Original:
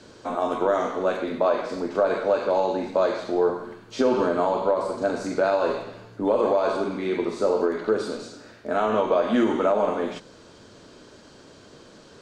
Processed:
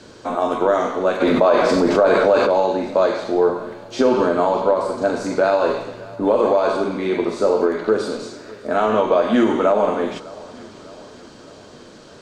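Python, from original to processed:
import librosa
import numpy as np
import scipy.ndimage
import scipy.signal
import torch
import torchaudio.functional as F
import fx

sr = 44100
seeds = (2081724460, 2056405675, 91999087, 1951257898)

y = fx.echo_feedback(x, sr, ms=605, feedback_pct=56, wet_db=-21)
y = fx.env_flatten(y, sr, amount_pct=70, at=(1.2, 2.46), fade=0.02)
y = F.gain(torch.from_numpy(y), 5.0).numpy()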